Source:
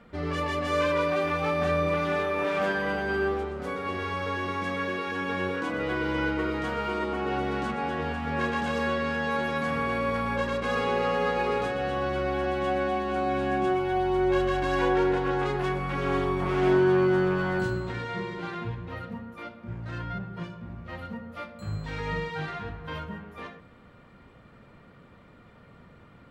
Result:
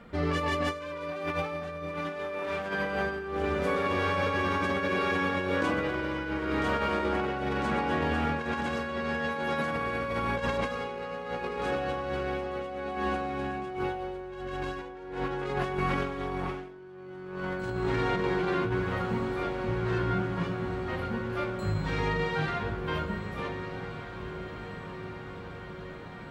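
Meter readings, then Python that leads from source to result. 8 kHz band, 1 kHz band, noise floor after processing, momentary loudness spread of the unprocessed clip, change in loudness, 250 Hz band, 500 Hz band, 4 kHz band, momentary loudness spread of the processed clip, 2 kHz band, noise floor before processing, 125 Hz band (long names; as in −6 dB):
can't be measured, −2.5 dB, −42 dBFS, 13 LU, −3.0 dB, −2.5 dB, −4.0 dB, −1.5 dB, 11 LU, −1.5 dB, −53 dBFS, −0.5 dB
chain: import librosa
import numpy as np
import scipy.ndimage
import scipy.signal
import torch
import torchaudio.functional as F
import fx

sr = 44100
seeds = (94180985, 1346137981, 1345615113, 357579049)

p1 = x + fx.echo_diffused(x, sr, ms=1496, feedback_pct=67, wet_db=-11.0, dry=0)
y = fx.over_compress(p1, sr, threshold_db=-30.0, ratio=-0.5)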